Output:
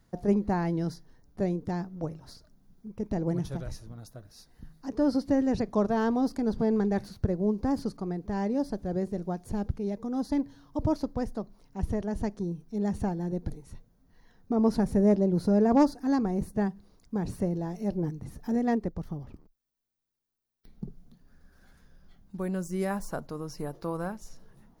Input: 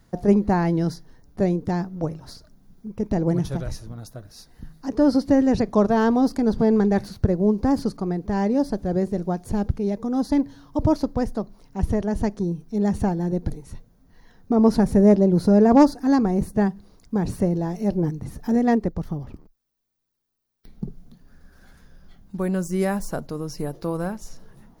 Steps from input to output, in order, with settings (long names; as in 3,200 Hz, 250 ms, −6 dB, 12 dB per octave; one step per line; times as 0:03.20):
0:22.90–0:24.12: parametric band 1,100 Hz +5 dB 1.4 octaves
level −7.5 dB